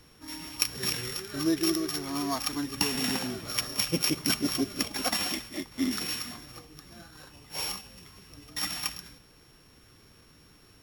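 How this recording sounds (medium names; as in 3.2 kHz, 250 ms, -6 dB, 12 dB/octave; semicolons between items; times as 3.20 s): a buzz of ramps at a fixed pitch in blocks of 8 samples; MP3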